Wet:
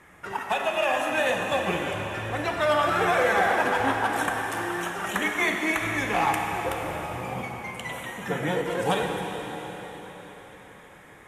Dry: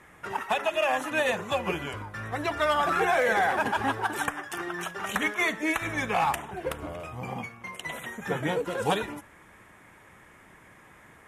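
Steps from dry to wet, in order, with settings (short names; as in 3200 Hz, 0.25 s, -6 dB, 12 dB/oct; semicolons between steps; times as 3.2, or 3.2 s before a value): plate-style reverb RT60 4.7 s, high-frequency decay 1×, DRR 1 dB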